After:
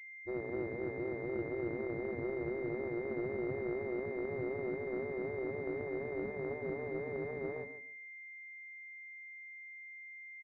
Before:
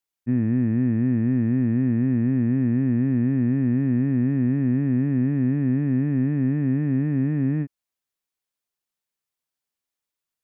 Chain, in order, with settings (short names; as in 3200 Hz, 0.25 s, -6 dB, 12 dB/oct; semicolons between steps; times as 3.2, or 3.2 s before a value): 6.23–6.7 notches 50/100/150/200/250/300 Hz; feedback echo 0.143 s, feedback 20%, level -10 dB; spectral gate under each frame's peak -15 dB weak; pulse-width modulation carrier 2100 Hz; gain +1 dB